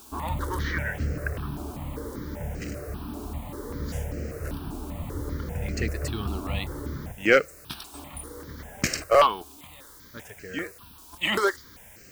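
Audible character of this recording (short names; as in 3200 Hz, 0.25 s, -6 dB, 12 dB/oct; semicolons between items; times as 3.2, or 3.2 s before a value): a quantiser's noise floor 8-bit, dither triangular; notches that jump at a steady rate 5.1 Hz 520–3500 Hz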